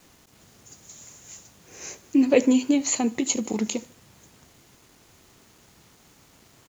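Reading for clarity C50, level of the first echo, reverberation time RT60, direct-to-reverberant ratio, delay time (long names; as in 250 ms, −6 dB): no reverb audible, −21.0 dB, no reverb audible, no reverb audible, 75 ms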